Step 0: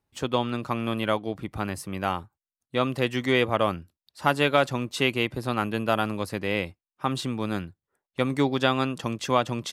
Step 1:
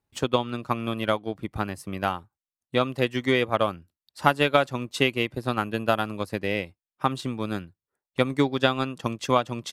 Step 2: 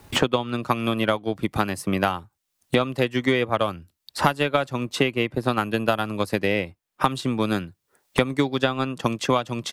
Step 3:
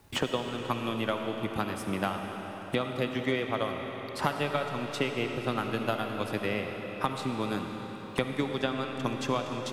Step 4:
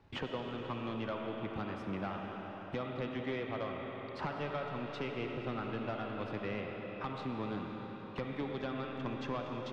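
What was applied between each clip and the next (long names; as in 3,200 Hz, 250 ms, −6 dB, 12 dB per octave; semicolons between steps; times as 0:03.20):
transient designer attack +6 dB, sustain −5 dB; level −2 dB
multiband upward and downward compressor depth 100%; level +1.5 dB
convolution reverb RT60 5.2 s, pre-delay 25 ms, DRR 3.5 dB; level −9 dB
soft clipping −26 dBFS, distortion −10 dB; high-frequency loss of the air 220 metres; level −4 dB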